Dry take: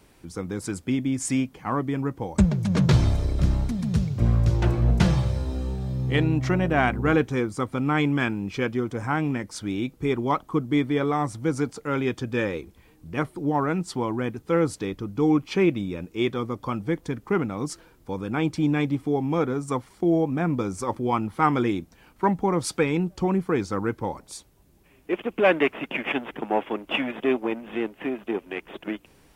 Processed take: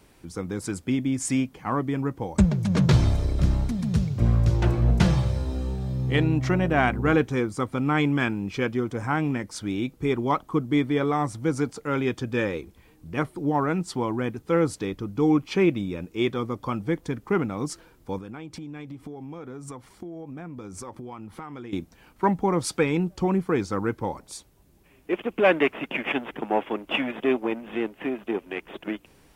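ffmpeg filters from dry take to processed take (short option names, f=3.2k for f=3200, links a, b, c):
-filter_complex "[0:a]asettb=1/sr,asplit=3[a][b][c];[a]atrim=end=18.184[d];[b]atrim=start=18.18:end=21.73,asetpts=PTS-STARTPTS,afade=t=in:d=0.004:c=qsin,afade=t=out:st=3.546:d=0.004:c=qsin,acompressor=threshold=-34dB:ratio=16:attack=3.2:release=140:knee=1:detection=peak[e];[c]atrim=start=21.726[f];[d][e]acrossfade=d=0.004:c1=hsin:c2=qsin[g];[g][f]acrossfade=d=0.004:c1=qsin:c2=hsin"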